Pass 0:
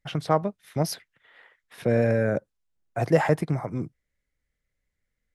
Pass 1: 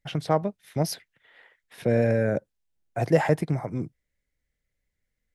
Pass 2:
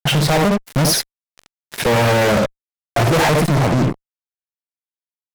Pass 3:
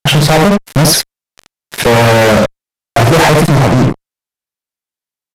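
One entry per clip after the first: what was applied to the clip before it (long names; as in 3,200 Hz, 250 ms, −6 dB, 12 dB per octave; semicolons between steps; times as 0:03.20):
parametric band 1,200 Hz −5 dB 0.55 octaves
ambience of single reflections 61 ms −10 dB, 76 ms −11.5 dB; fuzz pedal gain 42 dB, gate −45 dBFS
downsampling to 32,000 Hz; level +7 dB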